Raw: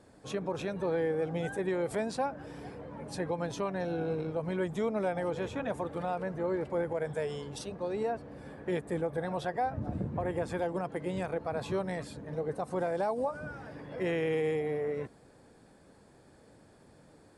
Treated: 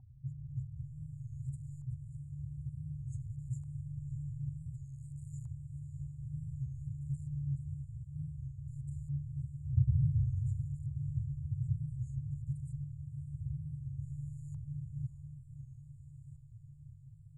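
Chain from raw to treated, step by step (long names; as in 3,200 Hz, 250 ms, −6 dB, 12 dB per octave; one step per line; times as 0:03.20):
loose part that buzzes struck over −39 dBFS, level −27 dBFS
0:04.85–0:05.93: tilt shelving filter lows −7 dB
brick-wall band-stop 150–6,800 Hz
hollow resonant body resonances 240/760 Hz, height 16 dB, ringing for 35 ms
auto-filter low-pass saw up 0.55 Hz 940–3,800 Hz
feedback delay with all-pass diffusion 619 ms, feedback 70%, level −11 dB
wow of a warped record 33 1/3 rpm, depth 100 cents
level +7.5 dB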